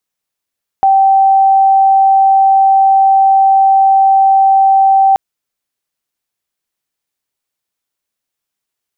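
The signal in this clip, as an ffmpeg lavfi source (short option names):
-f lavfi -i "sine=f=777:d=4.33:r=44100,volume=13.06dB"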